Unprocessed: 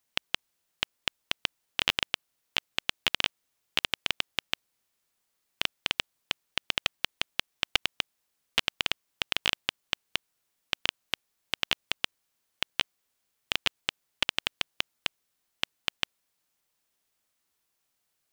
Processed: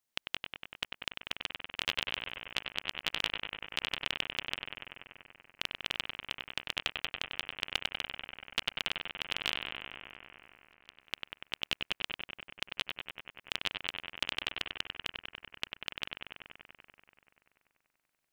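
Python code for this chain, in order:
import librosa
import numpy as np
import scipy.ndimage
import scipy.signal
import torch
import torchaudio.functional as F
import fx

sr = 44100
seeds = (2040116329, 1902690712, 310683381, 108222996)

p1 = fx.auto_swell(x, sr, attack_ms=308.0, at=(9.65, 11.01))
p2 = p1 + fx.echo_bbd(p1, sr, ms=96, stages=2048, feedback_pct=81, wet_db=-5, dry=0)
y = F.gain(torch.from_numpy(p2), -7.0).numpy()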